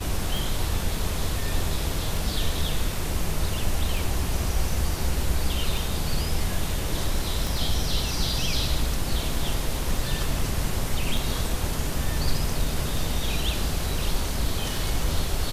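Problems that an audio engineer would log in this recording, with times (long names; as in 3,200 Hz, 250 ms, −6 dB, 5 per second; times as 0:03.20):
scratch tick 33 1/3 rpm
0:07.47: click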